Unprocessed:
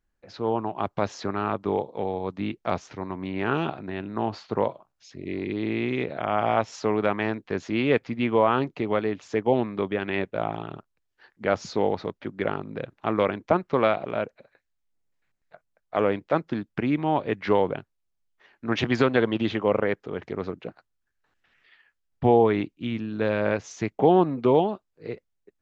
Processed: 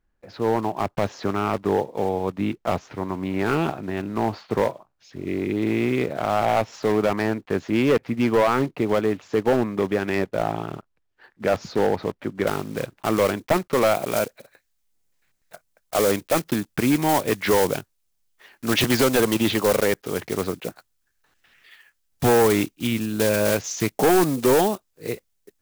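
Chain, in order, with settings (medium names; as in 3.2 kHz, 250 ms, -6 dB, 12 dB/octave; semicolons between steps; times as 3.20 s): block-companded coder 5-bit; treble shelf 3.9 kHz -10 dB, from 12.47 s +2.5 dB, from 13.95 s +11 dB; overload inside the chain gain 18 dB; trim +5 dB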